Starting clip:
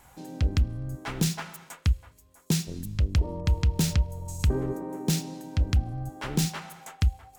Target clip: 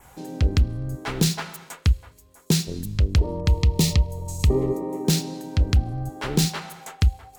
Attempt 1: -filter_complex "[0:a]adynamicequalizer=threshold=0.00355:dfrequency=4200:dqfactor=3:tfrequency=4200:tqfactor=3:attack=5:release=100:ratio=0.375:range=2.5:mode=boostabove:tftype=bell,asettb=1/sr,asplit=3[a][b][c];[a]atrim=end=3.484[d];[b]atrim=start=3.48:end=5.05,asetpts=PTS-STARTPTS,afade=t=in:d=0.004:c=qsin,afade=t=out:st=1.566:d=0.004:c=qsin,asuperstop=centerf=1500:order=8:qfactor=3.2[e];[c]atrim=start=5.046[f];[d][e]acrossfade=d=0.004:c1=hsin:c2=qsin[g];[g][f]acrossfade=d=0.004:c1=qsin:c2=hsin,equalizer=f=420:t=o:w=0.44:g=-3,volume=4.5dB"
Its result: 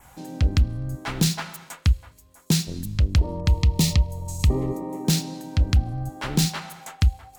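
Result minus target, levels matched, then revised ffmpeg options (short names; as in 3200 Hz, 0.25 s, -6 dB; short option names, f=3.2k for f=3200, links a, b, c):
500 Hz band -5.0 dB
-filter_complex "[0:a]adynamicequalizer=threshold=0.00355:dfrequency=4200:dqfactor=3:tfrequency=4200:tqfactor=3:attack=5:release=100:ratio=0.375:range=2.5:mode=boostabove:tftype=bell,asettb=1/sr,asplit=3[a][b][c];[a]atrim=end=3.484[d];[b]atrim=start=3.48:end=5.05,asetpts=PTS-STARTPTS,afade=t=in:d=0.004:c=qsin,afade=t=out:st=1.566:d=0.004:c=qsin,asuperstop=centerf=1500:order=8:qfactor=3.2[e];[c]atrim=start=5.046[f];[d][e]acrossfade=d=0.004:c1=hsin:c2=qsin[g];[g][f]acrossfade=d=0.004:c1=qsin:c2=hsin,equalizer=f=420:t=o:w=0.44:g=5,volume=4.5dB"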